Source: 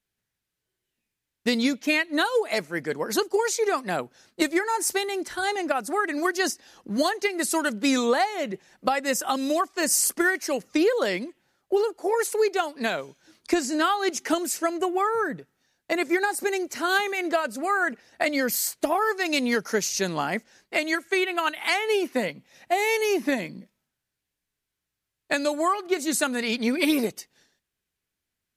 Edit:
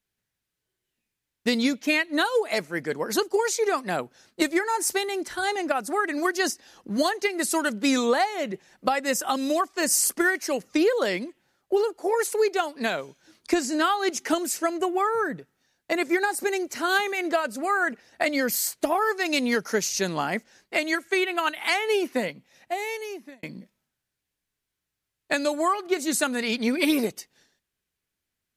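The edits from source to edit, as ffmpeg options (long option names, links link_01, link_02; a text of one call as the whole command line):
ffmpeg -i in.wav -filter_complex "[0:a]asplit=2[link_01][link_02];[link_01]atrim=end=23.43,asetpts=PTS-STARTPTS,afade=type=out:start_time=22.11:duration=1.32[link_03];[link_02]atrim=start=23.43,asetpts=PTS-STARTPTS,afade=type=in:duration=0.004:curve=hsin[link_04];[link_03][link_04]concat=n=2:v=0:a=1" out.wav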